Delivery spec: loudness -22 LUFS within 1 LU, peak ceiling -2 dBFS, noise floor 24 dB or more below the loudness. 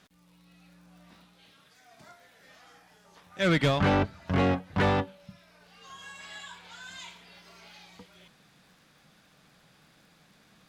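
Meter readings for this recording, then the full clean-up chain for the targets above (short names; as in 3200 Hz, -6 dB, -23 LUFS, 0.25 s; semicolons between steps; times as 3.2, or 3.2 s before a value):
ticks 40/s; loudness -27.5 LUFS; peak -13.0 dBFS; loudness target -22.0 LUFS
-> de-click; gain +5.5 dB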